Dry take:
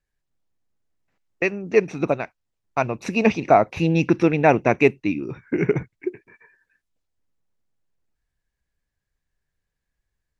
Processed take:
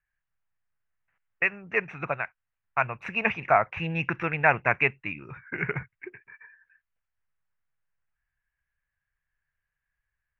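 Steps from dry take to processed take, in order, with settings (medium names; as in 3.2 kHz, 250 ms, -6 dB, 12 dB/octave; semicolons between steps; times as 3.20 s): FFT filter 140 Hz 0 dB, 290 Hz -13 dB, 1.6 kHz +12 dB, 2.9 kHz +4 dB, 4.2 kHz -15 dB; trim -7 dB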